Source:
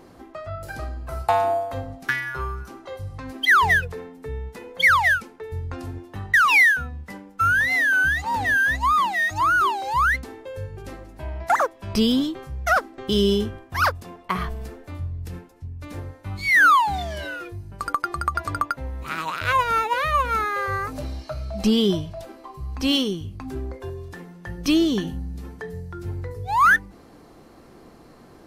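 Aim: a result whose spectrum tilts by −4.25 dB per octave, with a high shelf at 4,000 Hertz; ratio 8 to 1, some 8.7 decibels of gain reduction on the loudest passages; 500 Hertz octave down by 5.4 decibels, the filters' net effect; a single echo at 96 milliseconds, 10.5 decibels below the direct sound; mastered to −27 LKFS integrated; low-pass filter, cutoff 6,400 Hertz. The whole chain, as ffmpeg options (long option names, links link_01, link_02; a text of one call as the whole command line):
ffmpeg -i in.wav -af "lowpass=6400,equalizer=frequency=500:width_type=o:gain=-8,highshelf=frequency=4000:gain=6.5,acompressor=threshold=-21dB:ratio=8,aecho=1:1:96:0.299,volume=-0.5dB" out.wav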